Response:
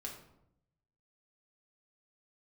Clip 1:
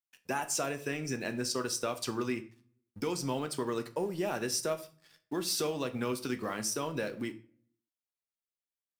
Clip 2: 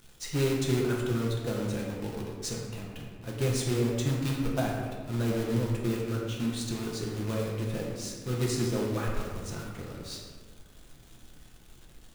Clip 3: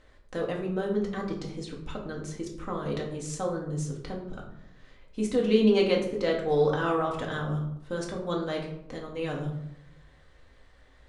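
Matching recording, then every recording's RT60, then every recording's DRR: 3; 0.45 s, 1.7 s, 0.80 s; 8.0 dB, -3.0 dB, -1.5 dB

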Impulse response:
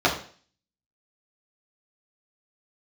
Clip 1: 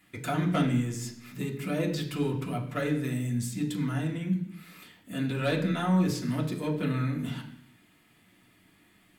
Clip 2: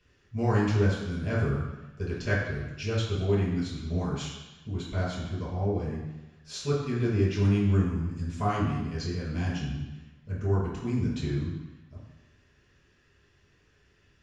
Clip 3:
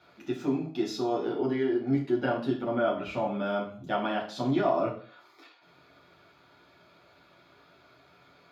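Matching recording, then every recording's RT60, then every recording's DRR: 3; 0.70 s, 1.1 s, 0.45 s; -3.0 dB, -7.5 dB, -5.0 dB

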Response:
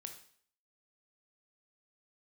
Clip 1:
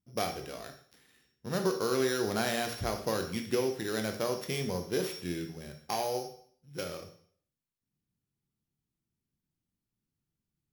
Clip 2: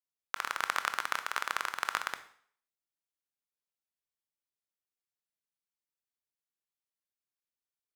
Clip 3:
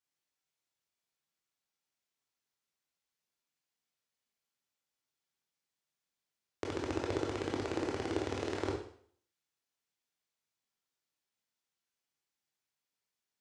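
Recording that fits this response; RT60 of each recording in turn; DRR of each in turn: 1; 0.55 s, 0.55 s, 0.55 s; 5.0 dB, 10.0 dB, -1.5 dB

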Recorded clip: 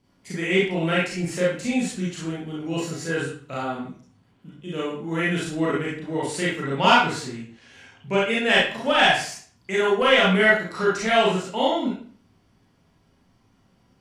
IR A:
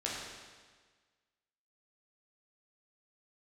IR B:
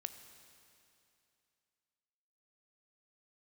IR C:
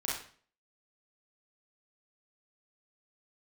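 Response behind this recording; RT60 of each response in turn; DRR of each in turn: C; 1.5 s, 2.7 s, 0.45 s; -5.5 dB, 9.0 dB, -6.5 dB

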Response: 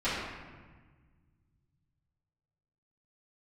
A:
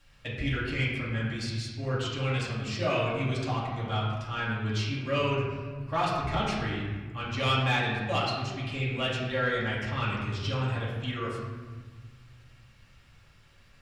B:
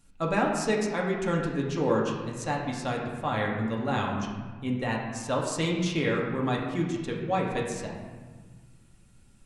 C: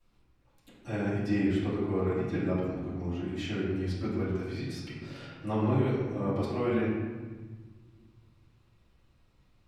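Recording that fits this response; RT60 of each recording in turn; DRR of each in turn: C; 1.4 s, 1.4 s, 1.4 s; -8.0 dB, -2.5 dB, -16.0 dB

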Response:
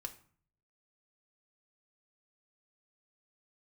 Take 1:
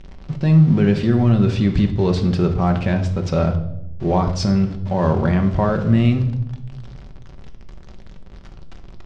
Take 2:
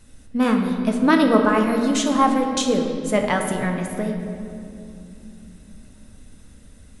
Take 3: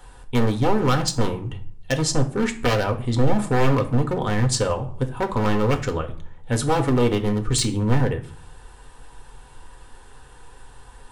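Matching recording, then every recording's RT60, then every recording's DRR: 3; 0.85 s, 2.8 s, 0.50 s; 4.5 dB, 2.0 dB, 4.5 dB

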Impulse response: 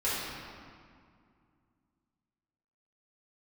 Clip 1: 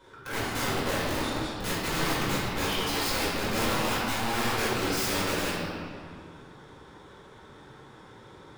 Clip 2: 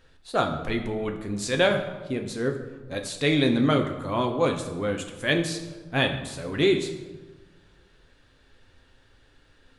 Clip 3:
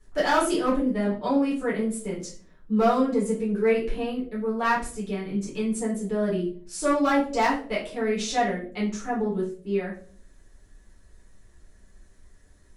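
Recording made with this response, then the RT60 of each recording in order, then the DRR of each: 1; 2.2 s, 1.3 s, 0.45 s; -10.5 dB, 3.5 dB, -7.5 dB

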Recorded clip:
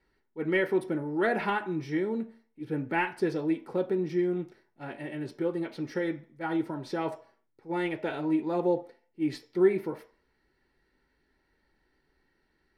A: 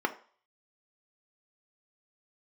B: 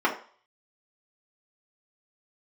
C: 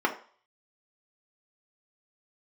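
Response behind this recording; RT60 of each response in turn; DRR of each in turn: A; 0.45 s, 0.45 s, 0.45 s; 4.5 dB, -4.5 dB, 0.0 dB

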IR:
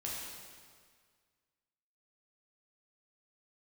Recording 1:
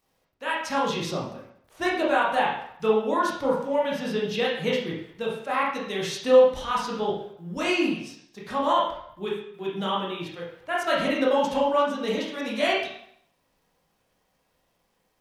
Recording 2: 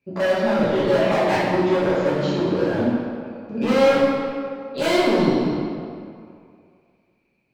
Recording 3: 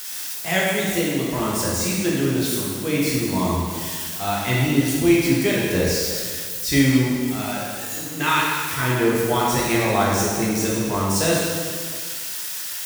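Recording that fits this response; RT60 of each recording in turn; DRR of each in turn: 3; 0.70 s, 2.4 s, 1.8 s; -5.0 dB, -10.5 dB, -5.0 dB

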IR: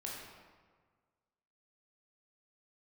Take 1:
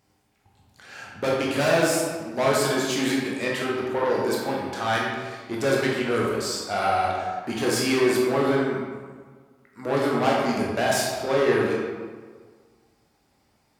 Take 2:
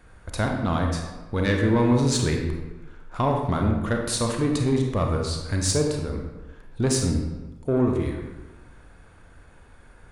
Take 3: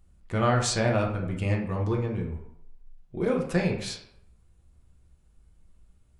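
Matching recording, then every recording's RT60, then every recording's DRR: 1; 1.6 s, 1.2 s, 0.75 s; -4.0 dB, 1.5 dB, -0.5 dB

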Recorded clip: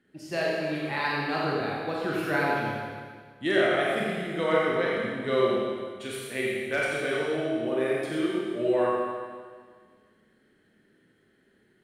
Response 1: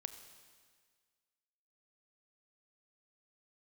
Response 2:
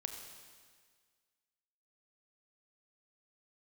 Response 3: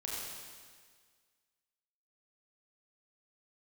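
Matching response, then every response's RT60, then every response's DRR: 3; 1.7 s, 1.7 s, 1.7 s; 9.0 dB, 4.5 dB, -5.5 dB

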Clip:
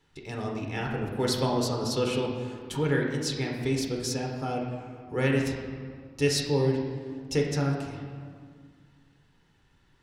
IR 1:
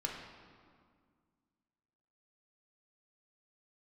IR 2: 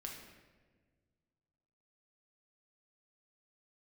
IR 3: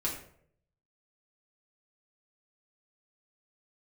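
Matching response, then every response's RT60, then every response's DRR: 1; 2.0 s, 1.5 s, 0.65 s; -1.0 dB, -0.5 dB, -5.0 dB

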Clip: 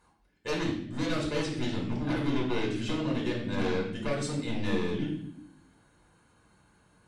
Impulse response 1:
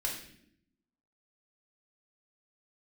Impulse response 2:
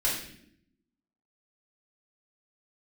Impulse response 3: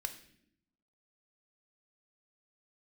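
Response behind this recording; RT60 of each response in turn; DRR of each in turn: 1; 0.70 s, 0.70 s, no single decay rate; -3.0 dB, -7.5 dB, 6.5 dB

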